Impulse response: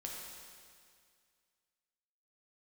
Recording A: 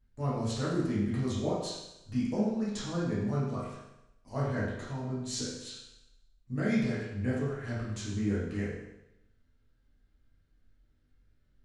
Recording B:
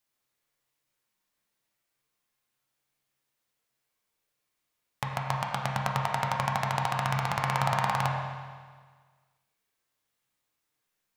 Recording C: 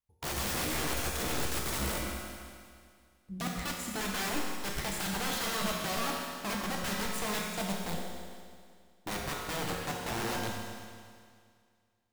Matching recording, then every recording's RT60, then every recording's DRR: C; 0.85, 1.6, 2.1 seconds; −8.5, −1.5, −2.0 decibels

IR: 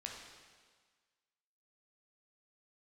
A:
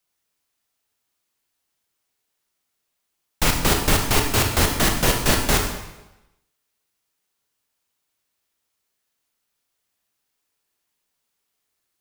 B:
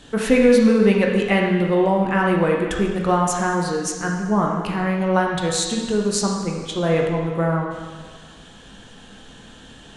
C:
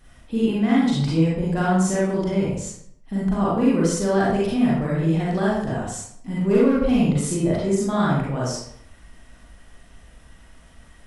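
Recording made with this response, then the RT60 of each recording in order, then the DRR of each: B; 1.0, 1.6, 0.65 seconds; 2.5, −0.5, −7.0 decibels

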